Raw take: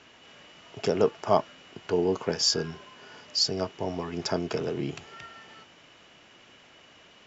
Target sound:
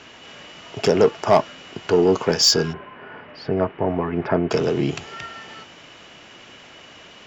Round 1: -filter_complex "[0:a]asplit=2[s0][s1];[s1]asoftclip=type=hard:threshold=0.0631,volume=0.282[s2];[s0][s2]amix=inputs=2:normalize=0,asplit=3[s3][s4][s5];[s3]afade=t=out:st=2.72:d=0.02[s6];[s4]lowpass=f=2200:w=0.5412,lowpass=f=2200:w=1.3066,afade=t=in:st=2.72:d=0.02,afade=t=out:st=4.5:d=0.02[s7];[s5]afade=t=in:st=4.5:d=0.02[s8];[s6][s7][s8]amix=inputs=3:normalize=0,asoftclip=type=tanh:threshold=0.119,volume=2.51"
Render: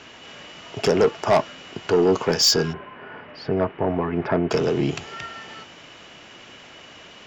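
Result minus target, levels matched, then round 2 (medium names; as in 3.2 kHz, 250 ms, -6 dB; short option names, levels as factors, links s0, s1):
saturation: distortion +7 dB
-filter_complex "[0:a]asplit=2[s0][s1];[s1]asoftclip=type=hard:threshold=0.0631,volume=0.282[s2];[s0][s2]amix=inputs=2:normalize=0,asplit=3[s3][s4][s5];[s3]afade=t=out:st=2.72:d=0.02[s6];[s4]lowpass=f=2200:w=0.5412,lowpass=f=2200:w=1.3066,afade=t=in:st=2.72:d=0.02,afade=t=out:st=4.5:d=0.02[s7];[s5]afade=t=in:st=4.5:d=0.02[s8];[s6][s7][s8]amix=inputs=3:normalize=0,asoftclip=type=tanh:threshold=0.237,volume=2.51"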